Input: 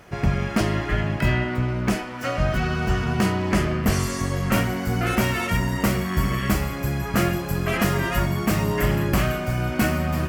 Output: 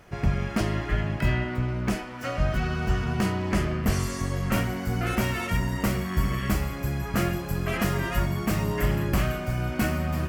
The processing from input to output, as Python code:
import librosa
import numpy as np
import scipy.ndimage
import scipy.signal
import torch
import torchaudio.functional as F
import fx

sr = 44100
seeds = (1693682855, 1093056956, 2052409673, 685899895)

y = fx.low_shelf(x, sr, hz=66.0, db=7.0)
y = y * 10.0 ** (-5.0 / 20.0)